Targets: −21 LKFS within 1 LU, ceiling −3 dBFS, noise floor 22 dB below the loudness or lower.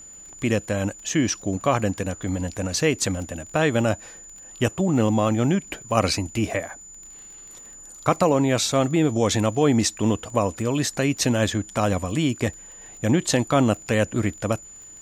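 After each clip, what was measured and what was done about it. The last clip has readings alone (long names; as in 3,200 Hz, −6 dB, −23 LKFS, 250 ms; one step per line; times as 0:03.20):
crackle rate 26 per second; interfering tone 7,000 Hz; level of the tone −41 dBFS; integrated loudness −23.0 LKFS; sample peak −3.5 dBFS; target loudness −21.0 LKFS
→ click removal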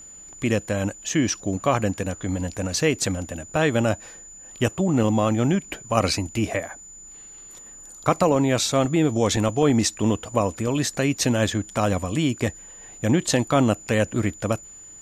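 crackle rate 0 per second; interfering tone 7,000 Hz; level of the tone −41 dBFS
→ notch filter 7,000 Hz, Q 30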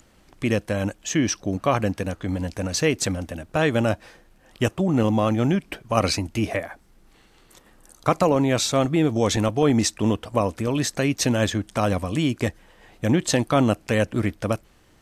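interfering tone none found; integrated loudness −23.0 LKFS; sample peak −4.0 dBFS; target loudness −21.0 LKFS
→ level +2 dB
brickwall limiter −3 dBFS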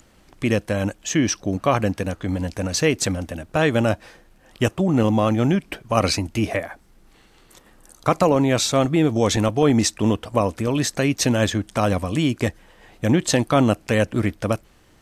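integrated loudness −21.0 LKFS; sample peak −3.0 dBFS; background noise floor −54 dBFS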